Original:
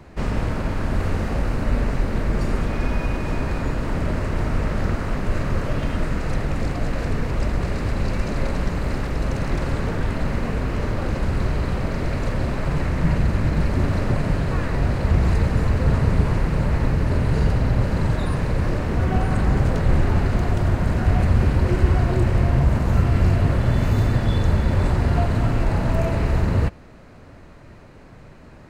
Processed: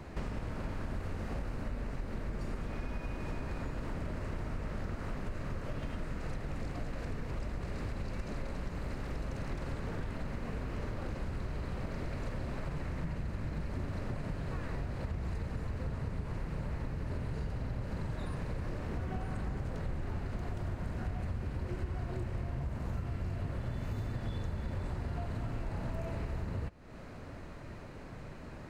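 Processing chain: compressor, threshold -33 dBFS, peak gain reduction 20.5 dB; gain -2 dB

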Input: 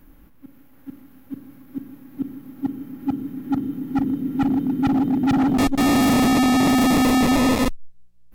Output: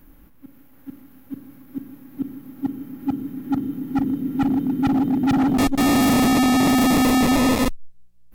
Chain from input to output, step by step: high shelf 9300 Hz +4 dB

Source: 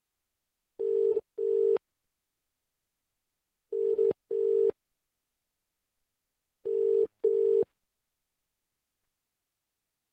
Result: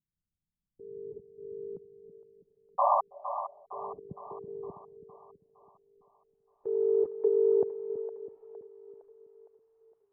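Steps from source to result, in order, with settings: 3.99–4.48 negative-ratio compressor -31 dBFS, ratio -1; low-pass sweep 170 Hz -> 1000 Hz, 5.54–6.58; 2.78–3.01 painted sound noise 560–1200 Hz -22 dBFS; split-band echo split 480 Hz, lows 0.327 s, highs 0.461 s, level -10 dB; gain -2 dB

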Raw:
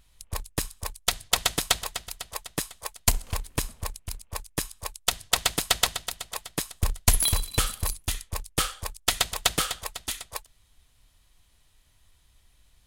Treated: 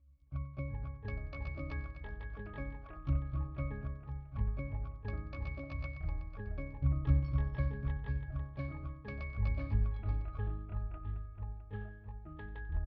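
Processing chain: delay-line pitch shifter +5 st; steep low-pass 4900 Hz; octave resonator C#, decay 0.68 s; echoes that change speed 0.267 s, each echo -5 st, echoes 2; feedback echo 93 ms, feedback 53%, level -18 dB; gain +9.5 dB

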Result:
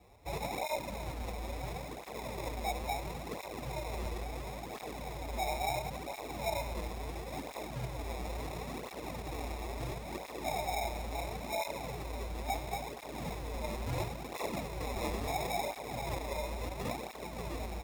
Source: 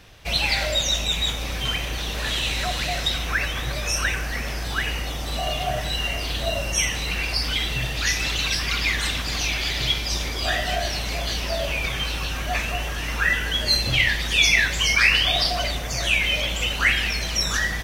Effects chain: tracing distortion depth 0.22 ms; steep low-pass 1100 Hz 36 dB/oct; low shelf 320 Hz -10 dB; in parallel at +2 dB: limiter -23.5 dBFS, peak gain reduction 7.5 dB; on the sum: sample-and-hold 29×; tape flanging out of phase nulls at 0.73 Hz, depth 7.8 ms; gain -7.5 dB

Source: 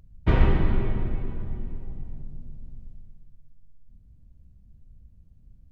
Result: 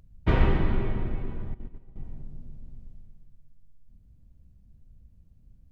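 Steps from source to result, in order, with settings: 1.54–1.96 gate -27 dBFS, range -14 dB; low shelf 190 Hz -3 dB

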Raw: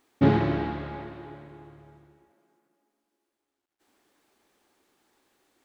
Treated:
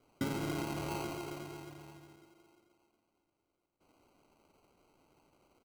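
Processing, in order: bell 90 Hz -4.5 dB 1.9 oct; compressor 8:1, threshold -33 dBFS, peak gain reduction 16.5 dB; feedback echo 88 ms, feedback 56%, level -5.5 dB; sample-and-hold 25×; vibrato 7.9 Hz 23 cents; gain -1 dB

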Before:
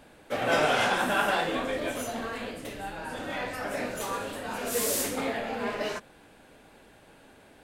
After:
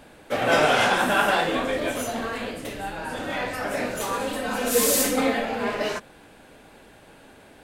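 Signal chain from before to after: 4.19–5.45 comb 3.9 ms, depth 81%; gain +5 dB

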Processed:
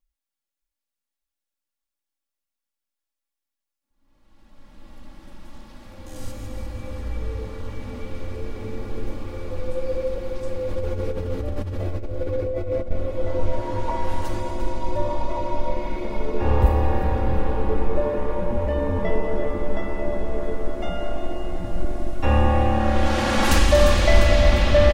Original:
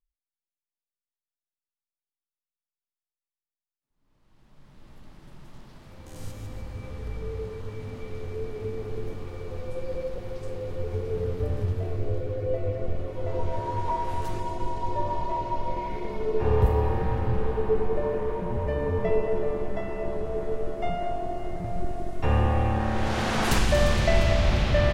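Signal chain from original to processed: split-band echo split 520 Hz, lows 0.598 s, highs 0.35 s, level -11 dB; 10.68–12.91 negative-ratio compressor -29 dBFS, ratio -1; comb 3.6 ms, depth 71%; gain +3 dB

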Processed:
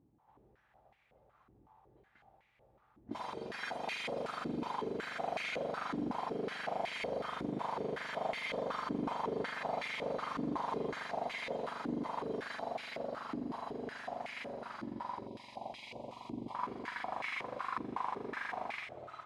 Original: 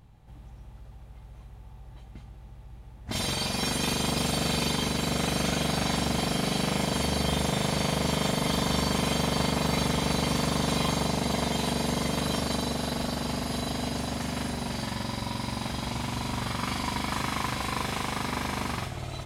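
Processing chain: 15.27–16.55 Butterworth band-stop 1500 Hz, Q 0.96; stepped band-pass 5.4 Hz 310–2200 Hz; gain +1 dB

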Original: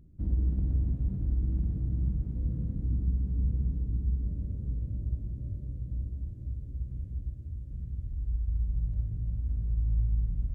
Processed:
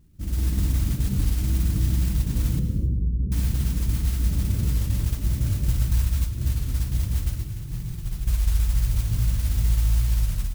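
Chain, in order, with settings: AGC gain up to 16 dB; 5.68–6.24 low shelf 180 Hz +10.5 dB; compressor, threshold -17 dBFS, peak gain reduction 12.5 dB; 7.44–8.28 fixed phaser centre 360 Hz, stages 8; modulation noise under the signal 19 dB; 2.59–3.32 rippled Chebyshev low-pass 540 Hz, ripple 3 dB; feedback echo 0.193 s, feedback 29%, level -22 dB; non-linear reverb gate 0.31 s flat, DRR 10 dB; record warp 33 1/3 rpm, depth 100 cents; gain -1.5 dB

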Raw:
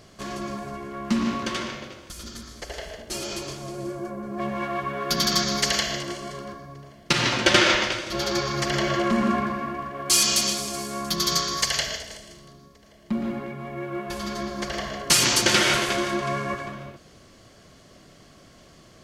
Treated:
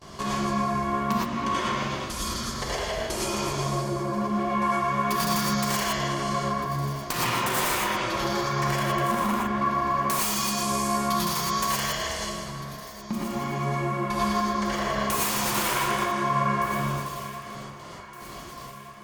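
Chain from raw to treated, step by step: gate with hold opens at -40 dBFS; vibrato 1.2 Hz 6 cents; wrapped overs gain 13.5 dB; dynamic EQ 4400 Hz, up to -6 dB, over -40 dBFS, Q 0.98; compressor 6:1, threshold -35 dBFS, peak gain reduction 15.5 dB; bell 1000 Hz +10.5 dB 0.39 oct; echo with dull and thin repeats by turns 0.758 s, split 1900 Hz, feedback 67%, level -12 dB; non-linear reverb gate 0.14 s rising, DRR -4.5 dB; gain +4 dB; Opus 256 kbps 48000 Hz

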